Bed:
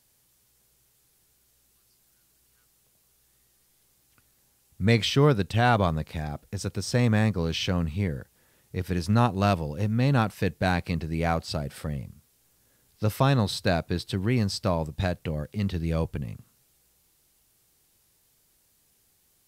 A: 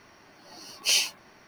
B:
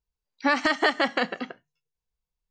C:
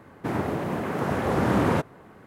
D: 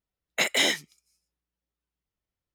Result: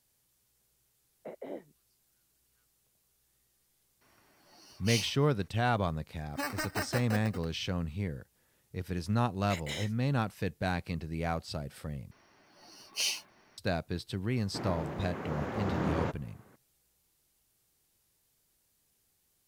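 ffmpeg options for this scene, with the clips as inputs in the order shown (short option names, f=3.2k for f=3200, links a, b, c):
-filter_complex "[4:a]asplit=2[a][b];[1:a]asplit=2[c][d];[0:a]volume=-7.5dB[e];[a]lowpass=f=530:t=q:w=1.5[f];[2:a]acrusher=samples=13:mix=1:aa=0.000001[g];[3:a]aresample=16000,aresample=44100[h];[e]asplit=2[i][j];[i]atrim=end=12.114[k];[d]atrim=end=1.47,asetpts=PTS-STARTPTS,volume=-8.5dB[l];[j]atrim=start=13.576[m];[f]atrim=end=2.54,asetpts=PTS-STARTPTS,volume=-12.5dB,afade=t=in:d=0.004:c=hsin,afade=t=out:st=2.536:d=0.004:c=hsin,adelay=870[n];[c]atrim=end=1.47,asetpts=PTS-STARTPTS,volume=-11.5dB,afade=t=in:d=0.004:c=hsin,afade=t=out:st=1.466:d=0.004:c=hsin,adelay=176841S[o];[g]atrim=end=2.5,asetpts=PTS-STARTPTS,volume=-13dB,afade=t=in:d=0.004:c=hsin,afade=t=out:st=2.496:d=0.004:c=hsin,adelay=261513S[p];[b]atrim=end=2.54,asetpts=PTS-STARTPTS,volume=-16.5dB,afade=t=in:d=0.004:c=hsin,afade=t=out:st=2.536:d=0.004:c=hsin,adelay=9120[q];[h]atrim=end=2.26,asetpts=PTS-STARTPTS,volume=-10.5dB,afade=t=in:d=0.004:c=hsin,afade=t=out:st=2.256:d=0.004:c=hsin,adelay=14300[r];[k][l]acrossfade=d=0.004:c1=hsin:c2=hsin[s];[s][m]acrossfade=d=0.004:c1=hsin:c2=hsin[t];[t][n][o][p][q][r]amix=inputs=6:normalize=0"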